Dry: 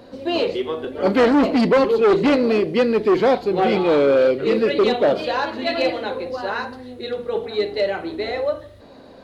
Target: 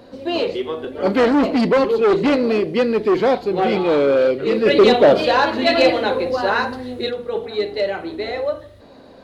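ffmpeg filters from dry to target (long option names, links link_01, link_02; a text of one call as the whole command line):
ffmpeg -i in.wav -filter_complex "[0:a]asplit=3[link_01][link_02][link_03];[link_01]afade=type=out:start_time=4.65:duration=0.02[link_04];[link_02]acontrast=81,afade=type=in:start_time=4.65:duration=0.02,afade=type=out:start_time=7.09:duration=0.02[link_05];[link_03]afade=type=in:start_time=7.09:duration=0.02[link_06];[link_04][link_05][link_06]amix=inputs=3:normalize=0" out.wav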